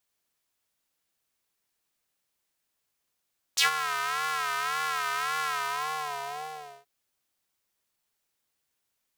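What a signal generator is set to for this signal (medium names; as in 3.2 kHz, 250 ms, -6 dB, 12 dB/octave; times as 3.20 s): synth patch with vibrato D3, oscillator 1 square, interval -12 st, oscillator 2 level -13 dB, noise -28 dB, filter highpass, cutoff 600 Hz, filter envelope 3.5 oct, filter decay 0.09 s, filter sustain 30%, attack 13 ms, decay 0.12 s, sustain -14 dB, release 1.37 s, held 1.91 s, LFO 1.8 Hz, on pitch 98 cents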